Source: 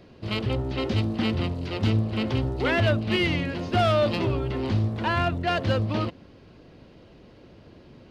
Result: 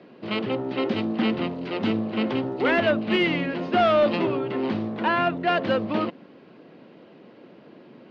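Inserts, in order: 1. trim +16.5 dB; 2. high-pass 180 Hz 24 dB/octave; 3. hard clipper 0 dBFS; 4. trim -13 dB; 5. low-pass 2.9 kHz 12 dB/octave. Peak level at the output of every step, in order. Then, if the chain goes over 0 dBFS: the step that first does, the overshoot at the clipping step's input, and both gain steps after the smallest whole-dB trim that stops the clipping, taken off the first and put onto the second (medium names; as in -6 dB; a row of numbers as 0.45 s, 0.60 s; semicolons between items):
+4.0 dBFS, +4.5 dBFS, 0.0 dBFS, -13.0 dBFS, -12.5 dBFS; step 1, 4.5 dB; step 1 +11.5 dB, step 4 -8 dB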